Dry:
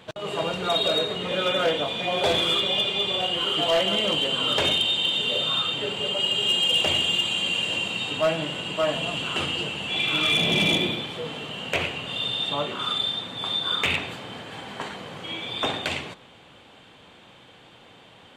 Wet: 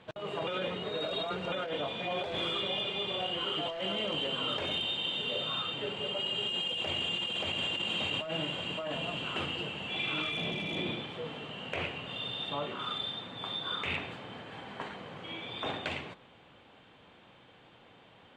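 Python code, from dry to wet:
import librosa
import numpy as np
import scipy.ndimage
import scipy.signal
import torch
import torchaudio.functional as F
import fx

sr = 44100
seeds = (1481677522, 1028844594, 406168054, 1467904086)

y = fx.echo_throw(x, sr, start_s=6.64, length_s=1.04, ms=580, feedback_pct=50, wet_db=-0.5)
y = fx.edit(y, sr, fx.reverse_span(start_s=0.47, length_s=1.05), tone=tone)
y = scipy.signal.sosfilt(scipy.signal.butter(2, 11000.0, 'lowpass', fs=sr, output='sos'), y)
y = fx.bass_treble(y, sr, bass_db=0, treble_db=-11)
y = fx.over_compress(y, sr, threshold_db=-26.0, ratio=-1.0)
y = y * librosa.db_to_amplitude(-7.5)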